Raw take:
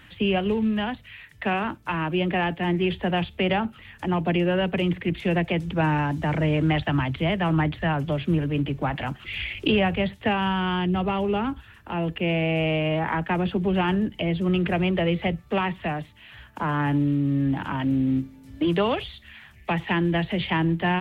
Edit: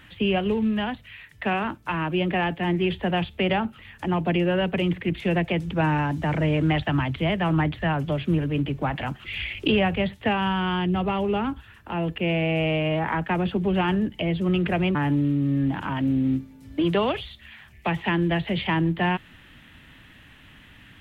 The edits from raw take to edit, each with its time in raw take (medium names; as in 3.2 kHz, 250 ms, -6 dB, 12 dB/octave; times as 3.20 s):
14.95–16.78 s: delete